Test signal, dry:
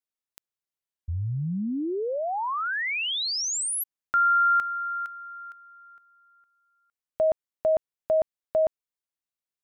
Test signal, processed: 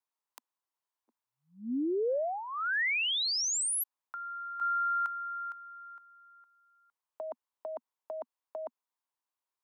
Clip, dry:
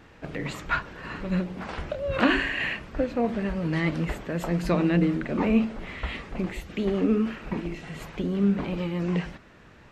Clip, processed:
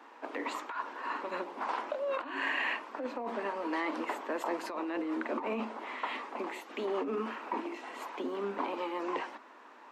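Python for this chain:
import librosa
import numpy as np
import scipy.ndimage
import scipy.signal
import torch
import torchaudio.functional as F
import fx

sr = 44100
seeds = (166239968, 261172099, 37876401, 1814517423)

y = scipy.signal.sosfilt(scipy.signal.butter(12, 240.0, 'highpass', fs=sr, output='sos'), x)
y = fx.peak_eq(y, sr, hz=970.0, db=14.5, octaves=0.76)
y = fx.over_compress(y, sr, threshold_db=-26.0, ratio=-1.0)
y = y * 10.0 ** (-7.5 / 20.0)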